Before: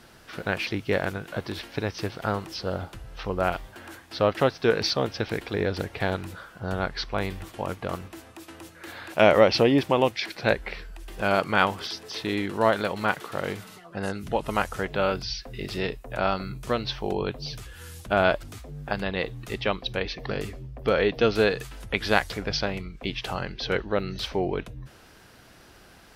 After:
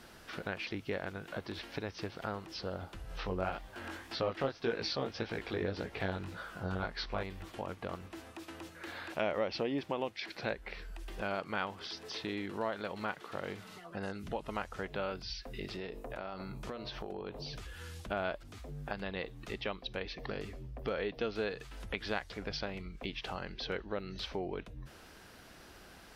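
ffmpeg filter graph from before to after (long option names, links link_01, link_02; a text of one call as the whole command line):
ffmpeg -i in.wav -filter_complex "[0:a]asettb=1/sr,asplit=3[link_01][link_02][link_03];[link_01]atrim=end=3.094[link_04];[link_02]atrim=start=3.09:end=7.23,asetpts=PTS-STARTPTS,afade=type=in:duration=0.004:curve=qsin,afade=type=out:start_time=4.136:duration=0.004:curve=qsin,acontrast=85,flanger=delay=16.5:depth=5.7:speed=1.8[link_05];[link_03]atrim=start=7.226[link_06];[link_04][link_05]acrossfade=duration=0.004:curve1=hsin:curve2=qsin[link_07];[link_07][link_06]acrossfade=duration=0.004:curve1=qsin:curve2=hsin,asettb=1/sr,asplit=3[link_08][link_09][link_10];[link_08]atrim=end=15.714[link_11];[link_09]atrim=start=15.71:end=17.59,asetpts=PTS-STARTPTS,afade=type=in:duration=0.004:curve=qsin,afade=type=out:start_time=1.876:duration=0.004:curve=qsin,equalizer=frequency=480:width=0.32:gain=5,bandreject=frequency=50.44:width_type=h:width=4,bandreject=frequency=100.88:width_type=h:width=4,bandreject=frequency=151.32:width_type=h:width=4,bandreject=frequency=201.76:width_type=h:width=4,bandreject=frequency=252.2:width_type=h:width=4,bandreject=frequency=302.64:width_type=h:width=4,bandreject=frequency=353.08:width_type=h:width=4,bandreject=frequency=403.52:width_type=h:width=4,bandreject=frequency=453.96:width_type=h:width=4,bandreject=frequency=504.4:width_type=h:width=4,bandreject=frequency=554.84:width_type=h:width=4,bandreject=frequency=605.28:width_type=h:width=4,bandreject=frequency=655.72:width_type=h:width=4,bandreject=frequency=706.16:width_type=h:width=4,bandreject=frequency=756.6:width_type=h:width=4,bandreject=frequency=807.04:width_type=h:width=4,bandreject=frequency=857.48:width_type=h:width=4,bandreject=frequency=907.92:width_type=h:width=4,bandreject=frequency=958.36:width_type=h:width=4,bandreject=frequency=1008.8:width_type=h:width=4,bandreject=frequency=1059.24:width_type=h:width=4,bandreject=frequency=1109.68:width_type=h:width=4,bandreject=frequency=1160.12:width_type=h:width=4,bandreject=frequency=1210.56:width_type=h:width=4,acompressor=threshold=-32dB:ratio=4:attack=3.2:release=140:knee=1:detection=peak[link_12];[link_10]atrim=start=17.586[link_13];[link_11][link_12]acrossfade=duration=0.004:curve1=hsin:curve2=qsin[link_14];[link_14][link_13]acrossfade=duration=0.004:curve1=qsin:curve2=hsin,acrossover=split=6100[link_15][link_16];[link_16]acompressor=threshold=-59dB:ratio=4:attack=1:release=60[link_17];[link_15][link_17]amix=inputs=2:normalize=0,equalizer=frequency=120:width_type=o:width=0.31:gain=-7.5,acompressor=threshold=-39dB:ratio=2,volume=-2.5dB" out.wav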